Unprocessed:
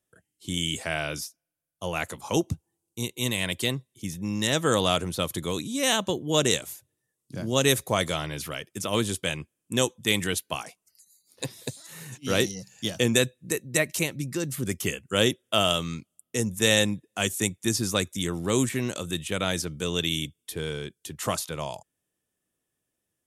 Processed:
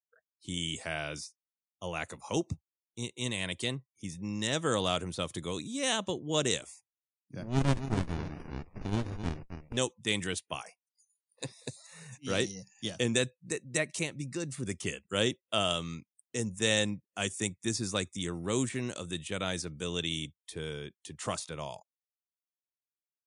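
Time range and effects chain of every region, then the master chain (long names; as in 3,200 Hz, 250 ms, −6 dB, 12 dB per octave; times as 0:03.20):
0:07.43–0:09.77: low-shelf EQ 180 Hz −6.5 dB + single-tap delay 265 ms −10 dB + windowed peak hold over 65 samples
whole clip: noise reduction from a noise print of the clip's start 29 dB; Butterworth low-pass 10,000 Hz 96 dB per octave; level −6.5 dB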